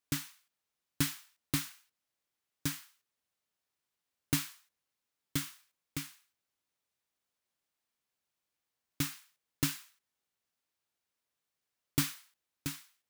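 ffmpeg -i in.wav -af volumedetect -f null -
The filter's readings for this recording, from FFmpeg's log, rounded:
mean_volume: -42.6 dB
max_volume: -14.0 dB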